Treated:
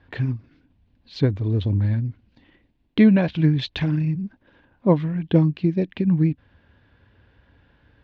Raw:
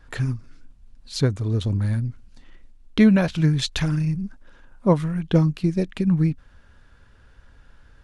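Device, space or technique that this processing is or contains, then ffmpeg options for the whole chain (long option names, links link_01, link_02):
guitar cabinet: -af "highpass=78,equalizer=frequency=94:width_type=q:width=4:gain=5,equalizer=frequency=300:width_type=q:width=4:gain=5,equalizer=frequency=1300:width_type=q:width=4:gain=-9,lowpass=frequency=3700:width=0.5412,lowpass=frequency=3700:width=1.3066"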